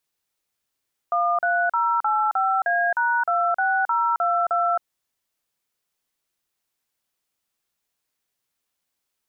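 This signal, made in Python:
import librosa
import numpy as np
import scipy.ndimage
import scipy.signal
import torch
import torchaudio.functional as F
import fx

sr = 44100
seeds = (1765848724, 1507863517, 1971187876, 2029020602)

y = fx.dtmf(sr, digits='13085A#26022', tone_ms=268, gap_ms=40, level_db=-21.0)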